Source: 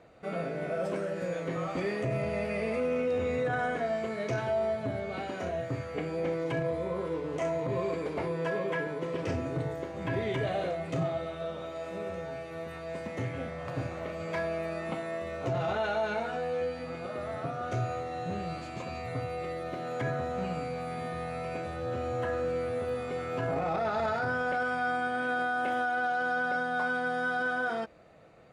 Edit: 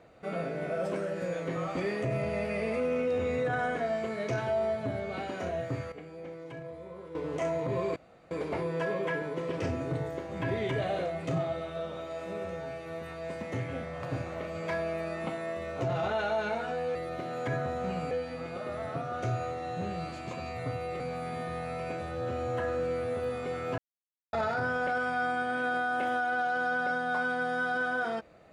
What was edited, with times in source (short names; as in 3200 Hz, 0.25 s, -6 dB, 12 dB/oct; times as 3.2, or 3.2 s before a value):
5.92–7.15 gain -11.5 dB
7.96 insert room tone 0.35 s
19.49–20.65 move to 16.6
23.43–23.98 mute